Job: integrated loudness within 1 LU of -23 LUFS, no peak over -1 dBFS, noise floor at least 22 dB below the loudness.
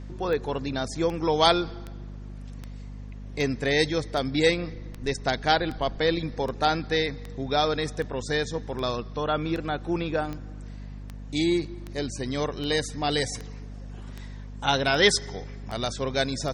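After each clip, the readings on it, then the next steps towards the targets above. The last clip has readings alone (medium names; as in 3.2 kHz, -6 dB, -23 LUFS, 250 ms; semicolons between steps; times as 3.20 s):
clicks found 22; hum 50 Hz; highest harmonic 250 Hz; hum level -36 dBFS; loudness -26.5 LUFS; peak level -5.5 dBFS; loudness target -23.0 LUFS
-> de-click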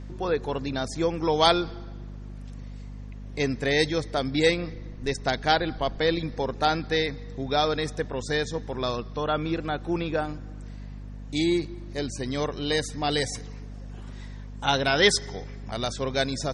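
clicks found 0; hum 50 Hz; highest harmonic 250 Hz; hum level -36 dBFS
-> hum notches 50/100/150/200/250 Hz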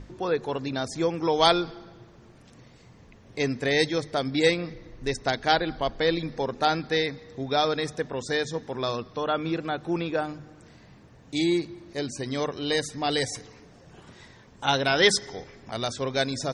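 hum not found; loudness -26.5 LUFS; peak level -5.5 dBFS; loudness target -23.0 LUFS
-> trim +3.5 dB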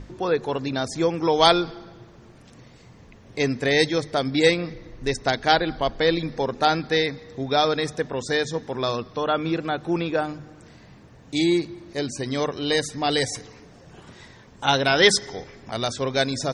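loudness -23.0 LUFS; peak level -2.0 dBFS; noise floor -49 dBFS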